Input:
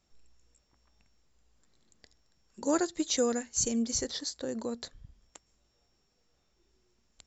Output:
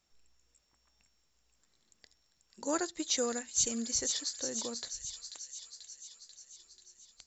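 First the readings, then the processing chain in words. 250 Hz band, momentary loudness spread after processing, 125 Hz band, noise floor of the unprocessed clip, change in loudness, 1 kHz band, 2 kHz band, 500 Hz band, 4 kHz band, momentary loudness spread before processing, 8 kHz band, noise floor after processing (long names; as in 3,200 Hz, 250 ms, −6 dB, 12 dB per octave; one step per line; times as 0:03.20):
−7.0 dB, 21 LU, −7.5 dB, −74 dBFS, −2.5 dB, −3.0 dB, −1.0 dB, −5.5 dB, +1.0 dB, 9 LU, can't be measured, −74 dBFS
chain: tilt shelving filter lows −4 dB, about 710 Hz
delay with a high-pass on its return 488 ms, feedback 63%, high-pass 3,100 Hz, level −5.5 dB
level −4 dB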